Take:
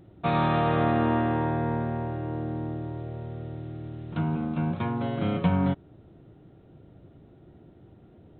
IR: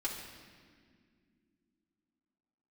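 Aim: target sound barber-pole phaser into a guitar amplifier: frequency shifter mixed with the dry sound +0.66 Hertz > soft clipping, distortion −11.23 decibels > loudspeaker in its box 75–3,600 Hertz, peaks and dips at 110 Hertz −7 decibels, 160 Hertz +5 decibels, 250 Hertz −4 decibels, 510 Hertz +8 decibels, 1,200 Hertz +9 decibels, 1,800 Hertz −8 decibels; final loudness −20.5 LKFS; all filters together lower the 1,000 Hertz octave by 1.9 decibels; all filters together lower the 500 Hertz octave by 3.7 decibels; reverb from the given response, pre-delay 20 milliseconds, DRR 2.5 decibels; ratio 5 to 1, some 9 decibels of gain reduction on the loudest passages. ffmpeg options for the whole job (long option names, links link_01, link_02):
-filter_complex "[0:a]equalizer=frequency=500:width_type=o:gain=-8,equalizer=frequency=1000:width_type=o:gain=-4,acompressor=threshold=-29dB:ratio=5,asplit=2[link_01][link_02];[1:a]atrim=start_sample=2205,adelay=20[link_03];[link_02][link_03]afir=irnorm=-1:irlink=0,volume=-5.5dB[link_04];[link_01][link_04]amix=inputs=2:normalize=0,asplit=2[link_05][link_06];[link_06]afreqshift=0.66[link_07];[link_05][link_07]amix=inputs=2:normalize=1,asoftclip=threshold=-34.5dB,highpass=75,equalizer=frequency=110:width_type=q:width=4:gain=-7,equalizer=frequency=160:width_type=q:width=4:gain=5,equalizer=frequency=250:width_type=q:width=4:gain=-4,equalizer=frequency=510:width_type=q:width=4:gain=8,equalizer=frequency=1200:width_type=q:width=4:gain=9,equalizer=frequency=1800:width_type=q:width=4:gain=-8,lowpass=frequency=3600:width=0.5412,lowpass=frequency=3600:width=1.3066,volume=19dB"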